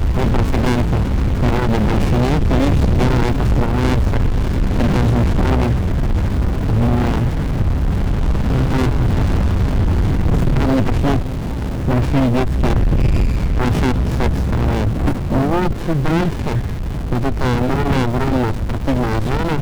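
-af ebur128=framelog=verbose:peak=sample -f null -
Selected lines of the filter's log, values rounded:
Integrated loudness:
  I:         -17.8 LUFS
  Threshold: -27.8 LUFS
Loudness range:
  LRA:         2.4 LU
  Threshold: -37.8 LUFS
  LRA low:   -19.1 LUFS
  LRA high:  -16.7 LUFS
Sample peak:
  Peak:      -10.2 dBFS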